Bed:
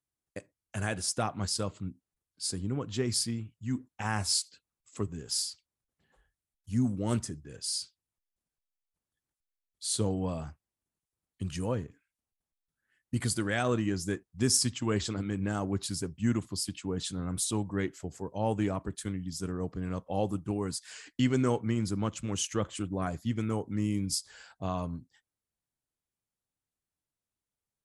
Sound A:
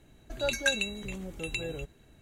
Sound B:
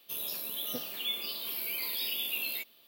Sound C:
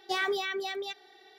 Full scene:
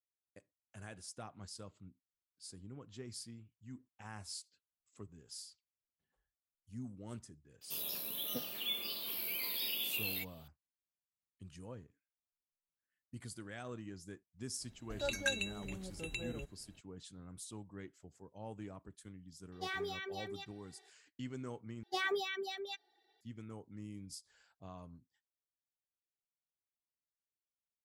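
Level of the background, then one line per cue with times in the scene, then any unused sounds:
bed -17.5 dB
7.61 s: add B -4 dB + bass shelf 150 Hz +9.5 dB
14.60 s: add A -7.5 dB
19.52 s: add C -10.5 dB
21.83 s: replace with C -4.5 dB + expander on every frequency bin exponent 1.5

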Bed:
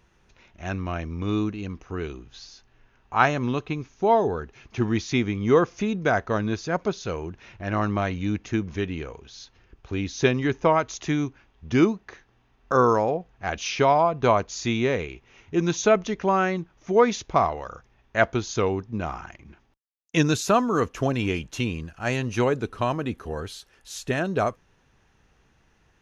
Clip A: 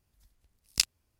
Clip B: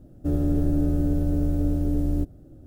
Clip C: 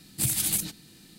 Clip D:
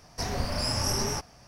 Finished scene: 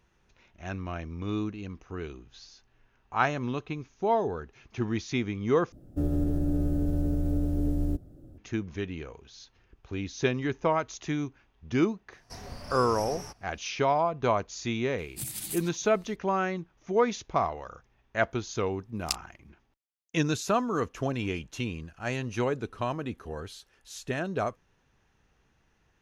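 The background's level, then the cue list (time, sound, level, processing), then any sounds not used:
bed -6 dB
5.72 s: replace with B -3 dB + peak limiter -15.5 dBFS
12.12 s: add D -12 dB
14.98 s: add C -10.5 dB
18.31 s: add A -6 dB

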